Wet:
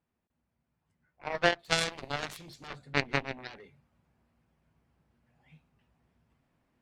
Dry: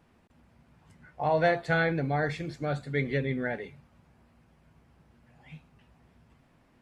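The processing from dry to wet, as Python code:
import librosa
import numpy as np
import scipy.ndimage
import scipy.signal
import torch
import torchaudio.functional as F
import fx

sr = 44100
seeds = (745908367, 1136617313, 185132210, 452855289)

y = fx.high_shelf_res(x, sr, hz=2400.0, db=10.5, q=1.5, at=(1.59, 2.68))
y = fx.cheby_harmonics(y, sr, harmonics=(3,), levels_db=(-9,), full_scale_db=-12.5)
y = fx.rider(y, sr, range_db=5, speed_s=0.5)
y = y * librosa.db_to_amplitude(8.0)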